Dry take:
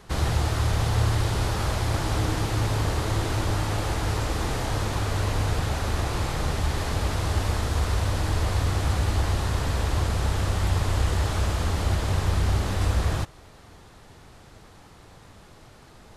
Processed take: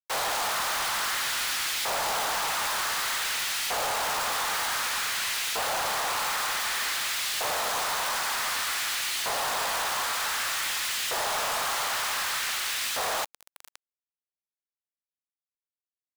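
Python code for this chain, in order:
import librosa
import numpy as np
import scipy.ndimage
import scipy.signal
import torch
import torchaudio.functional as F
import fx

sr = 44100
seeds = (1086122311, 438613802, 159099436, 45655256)

y = scipy.signal.sosfilt(scipy.signal.butter(4, 440.0, 'highpass', fs=sr, output='sos'), x)
y = y + 10.0 ** (-13.0 / 20.0) * np.pad(y, (int(559 * sr / 1000.0), 0))[:len(y)]
y = fx.quant_dither(y, sr, seeds[0], bits=6, dither='none')
y = fx.filter_lfo_highpass(y, sr, shape='saw_up', hz=0.54, low_hz=560.0, high_hz=2500.0, q=1.1)
y = np.clip(10.0 ** (33.5 / 20.0) * y, -1.0, 1.0) / 10.0 ** (33.5 / 20.0)
y = F.gain(torch.from_numpy(y), 7.5).numpy()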